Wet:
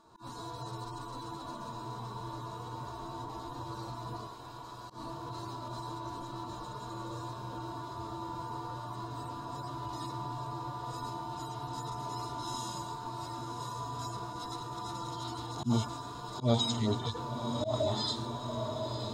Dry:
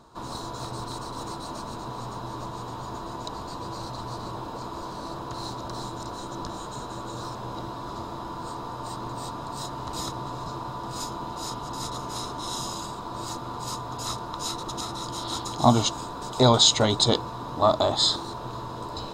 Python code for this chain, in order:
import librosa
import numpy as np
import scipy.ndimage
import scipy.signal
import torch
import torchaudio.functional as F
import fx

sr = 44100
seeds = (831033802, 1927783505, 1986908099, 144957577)

p1 = fx.hpss_only(x, sr, part='harmonic')
p2 = fx.highpass(p1, sr, hz=1300.0, slope=6, at=(4.27, 4.9))
p3 = p2 + fx.echo_diffused(p2, sr, ms=1056, feedback_pct=64, wet_db=-8.5, dry=0)
p4 = fx.auto_swell(p3, sr, attack_ms=113.0)
y = F.gain(torch.from_numpy(p4), -4.5).numpy()